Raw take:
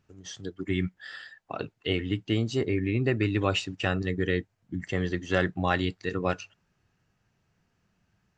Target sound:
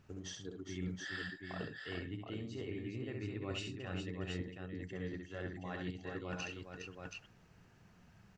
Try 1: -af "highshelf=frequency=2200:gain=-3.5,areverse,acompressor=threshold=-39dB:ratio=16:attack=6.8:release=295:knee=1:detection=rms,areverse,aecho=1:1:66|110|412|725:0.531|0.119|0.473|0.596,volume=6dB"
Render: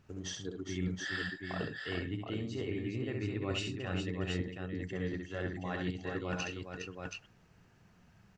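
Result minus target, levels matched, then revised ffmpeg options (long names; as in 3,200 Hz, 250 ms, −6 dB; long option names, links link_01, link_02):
downward compressor: peak gain reduction −5.5 dB
-af "highshelf=frequency=2200:gain=-3.5,areverse,acompressor=threshold=-45dB:ratio=16:attack=6.8:release=295:knee=1:detection=rms,areverse,aecho=1:1:66|110|412|725:0.531|0.119|0.473|0.596,volume=6dB"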